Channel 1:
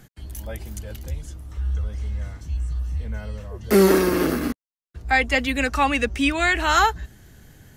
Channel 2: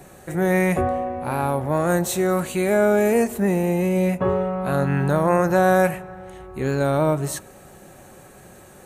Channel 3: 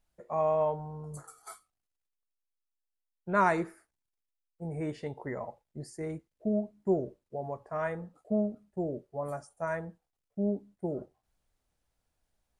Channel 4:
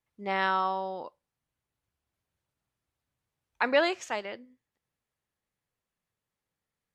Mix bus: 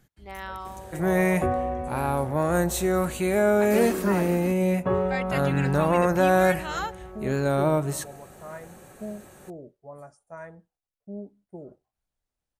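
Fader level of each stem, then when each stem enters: −13.5, −3.0, −7.5, −10.0 decibels; 0.00, 0.65, 0.70, 0.00 seconds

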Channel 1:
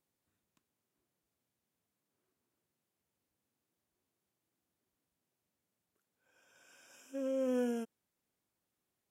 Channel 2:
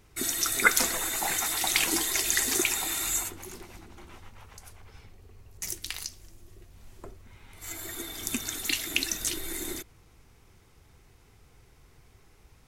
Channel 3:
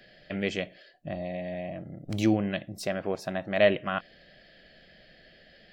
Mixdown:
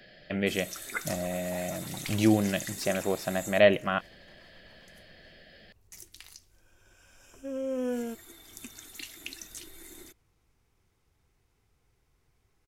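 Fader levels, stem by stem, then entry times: +2.0, −13.5, +1.5 decibels; 0.30, 0.30, 0.00 seconds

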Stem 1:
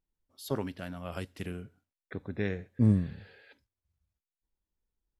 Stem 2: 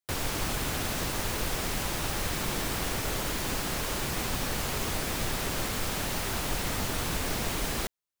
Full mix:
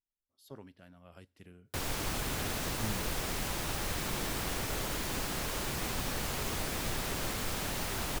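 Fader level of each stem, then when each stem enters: −16.0, −4.0 decibels; 0.00, 1.65 seconds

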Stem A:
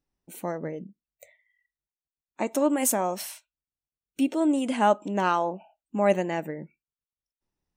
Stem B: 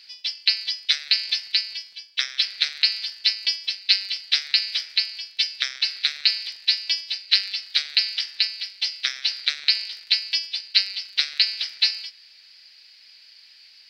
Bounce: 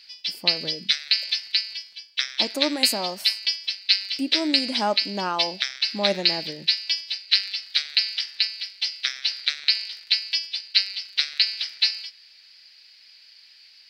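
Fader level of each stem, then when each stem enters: −3.0, −1.0 decibels; 0.00, 0.00 seconds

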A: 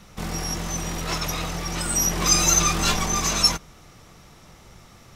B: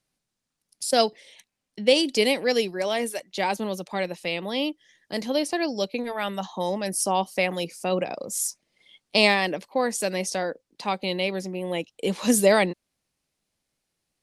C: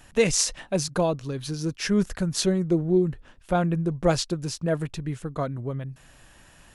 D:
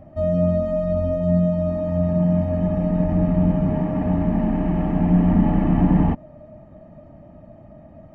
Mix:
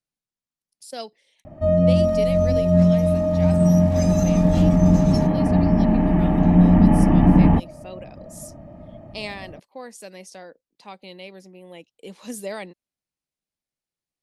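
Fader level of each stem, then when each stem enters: −19.0 dB, −13.5 dB, muted, +3.0 dB; 1.70 s, 0.00 s, muted, 1.45 s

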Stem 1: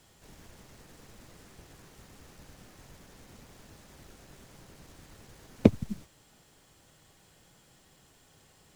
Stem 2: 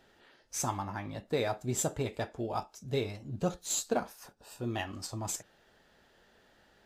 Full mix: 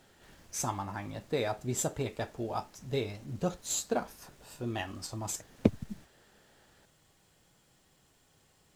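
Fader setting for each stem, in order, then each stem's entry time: −5.5, −0.5 decibels; 0.00, 0.00 seconds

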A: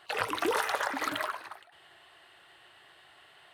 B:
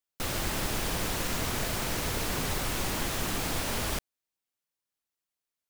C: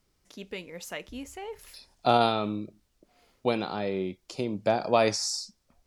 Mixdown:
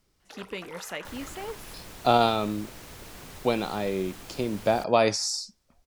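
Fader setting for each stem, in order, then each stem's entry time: −15.0, −13.5, +1.5 decibels; 0.20, 0.85, 0.00 seconds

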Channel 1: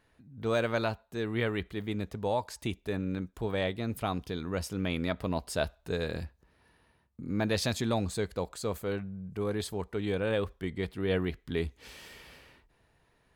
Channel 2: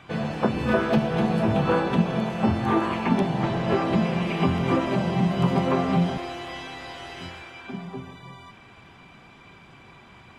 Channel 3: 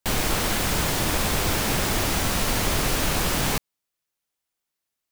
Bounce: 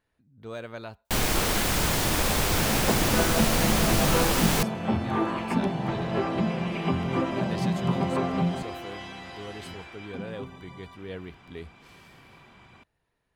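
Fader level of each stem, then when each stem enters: −9.0, −4.0, −1.0 decibels; 0.00, 2.45, 1.05 seconds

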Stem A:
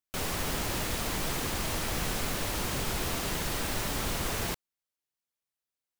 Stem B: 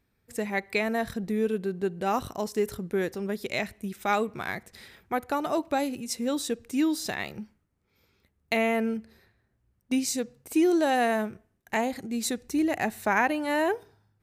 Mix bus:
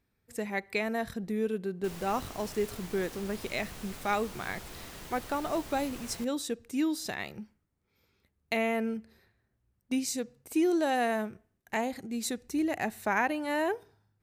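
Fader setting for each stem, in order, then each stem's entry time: −13.5, −4.0 decibels; 1.70, 0.00 seconds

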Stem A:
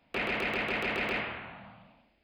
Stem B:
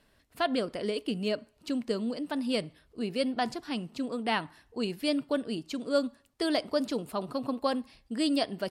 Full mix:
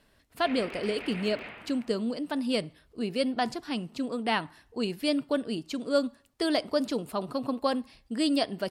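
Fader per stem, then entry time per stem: −10.0, +1.5 decibels; 0.30, 0.00 seconds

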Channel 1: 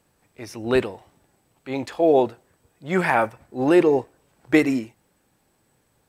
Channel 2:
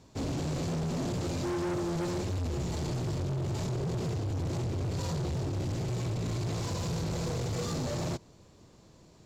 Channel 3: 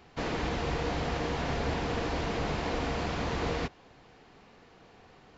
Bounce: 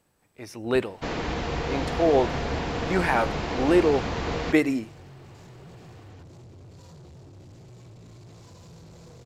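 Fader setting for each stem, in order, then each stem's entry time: −3.5, −15.0, +2.5 decibels; 0.00, 1.80, 0.85 seconds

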